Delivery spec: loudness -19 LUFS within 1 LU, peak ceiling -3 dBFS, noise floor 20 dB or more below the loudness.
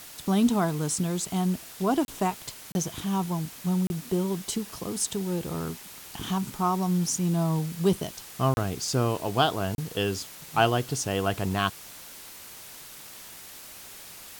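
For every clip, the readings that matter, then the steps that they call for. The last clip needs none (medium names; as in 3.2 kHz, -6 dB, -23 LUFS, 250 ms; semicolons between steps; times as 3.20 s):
dropouts 5; longest dropout 31 ms; noise floor -45 dBFS; noise floor target -48 dBFS; loudness -28.0 LUFS; peak level -9.0 dBFS; loudness target -19.0 LUFS
-> interpolate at 2.05/2.72/3.87/8.54/9.75 s, 31 ms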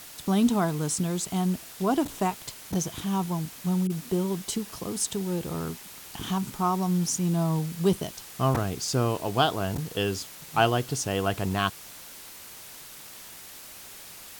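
dropouts 0; noise floor -45 dBFS; noise floor target -48 dBFS
-> noise print and reduce 6 dB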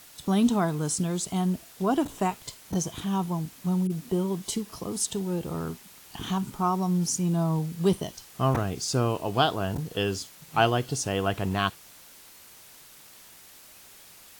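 noise floor -51 dBFS; loudness -28.0 LUFS; peak level -9.0 dBFS; loudness target -19.0 LUFS
-> trim +9 dB; peak limiter -3 dBFS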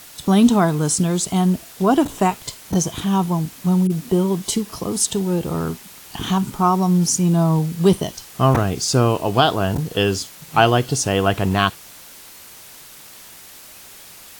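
loudness -19.0 LUFS; peak level -3.0 dBFS; noise floor -42 dBFS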